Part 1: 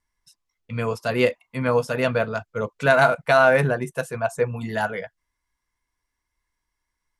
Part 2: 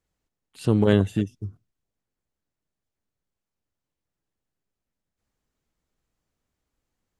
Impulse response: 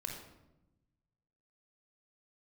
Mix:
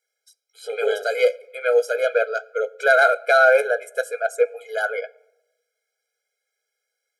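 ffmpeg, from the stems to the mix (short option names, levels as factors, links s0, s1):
-filter_complex "[0:a]volume=0.75,asplit=2[s0][s1];[s1]volume=0.141[s2];[1:a]flanger=delay=16.5:depth=4.4:speed=1.5,volume=0.891[s3];[2:a]atrim=start_sample=2205[s4];[s2][s4]afir=irnorm=-1:irlink=0[s5];[s0][s3][s5]amix=inputs=3:normalize=0,equalizer=f=750:t=o:w=0.51:g=-5.5,acontrast=68,afftfilt=real='re*eq(mod(floor(b*sr/1024/420),2),1)':imag='im*eq(mod(floor(b*sr/1024/420),2),1)':win_size=1024:overlap=0.75"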